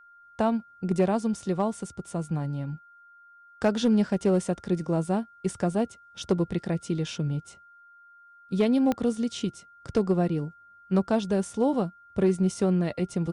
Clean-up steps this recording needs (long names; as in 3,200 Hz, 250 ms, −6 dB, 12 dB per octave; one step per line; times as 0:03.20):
clipped peaks rebuilt −15.5 dBFS
click removal
notch filter 1,400 Hz, Q 30